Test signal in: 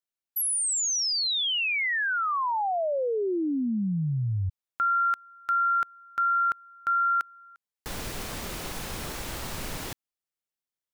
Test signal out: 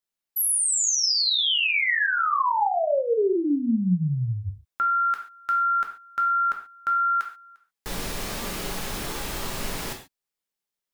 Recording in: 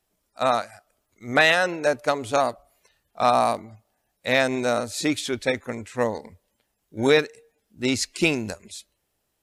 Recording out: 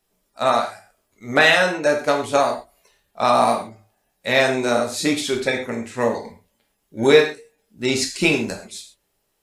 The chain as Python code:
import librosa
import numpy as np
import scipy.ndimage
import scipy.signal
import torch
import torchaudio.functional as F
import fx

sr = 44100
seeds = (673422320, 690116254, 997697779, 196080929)

y = fx.rev_gated(x, sr, seeds[0], gate_ms=160, shape='falling', drr_db=1.0)
y = y * 10.0 ** (1.5 / 20.0)